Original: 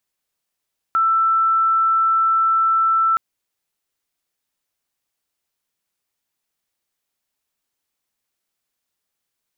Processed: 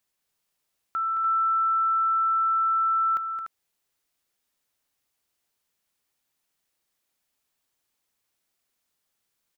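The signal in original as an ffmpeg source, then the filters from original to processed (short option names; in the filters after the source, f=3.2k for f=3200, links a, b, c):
-f lavfi -i "sine=f=1330:d=2.22:r=44100,volume=4.56dB"
-filter_complex "[0:a]alimiter=limit=-23.5dB:level=0:latency=1:release=378,asplit=2[a][b];[b]aecho=0:1:219|294:0.398|0.422[c];[a][c]amix=inputs=2:normalize=0"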